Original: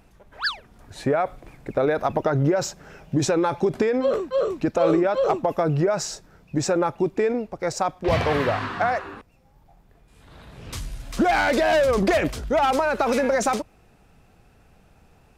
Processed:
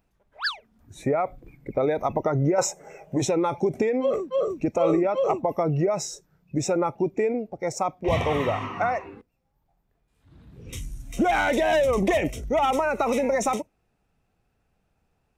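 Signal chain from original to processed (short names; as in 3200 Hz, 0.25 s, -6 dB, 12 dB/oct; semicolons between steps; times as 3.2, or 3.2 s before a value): 2.58–3.22 ten-band EQ 125 Hz -5 dB, 250 Hz -4 dB, 500 Hz +6 dB, 1000 Hz +9 dB, 2000 Hz +5 dB, 4000 Hz -4 dB, 8000 Hz +9 dB; spectral noise reduction 14 dB; gain -2 dB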